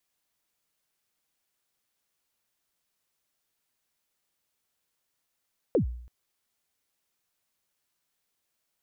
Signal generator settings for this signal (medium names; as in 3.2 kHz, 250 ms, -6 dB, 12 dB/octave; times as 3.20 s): kick drum length 0.33 s, from 570 Hz, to 60 Hz, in 107 ms, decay 0.66 s, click off, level -17.5 dB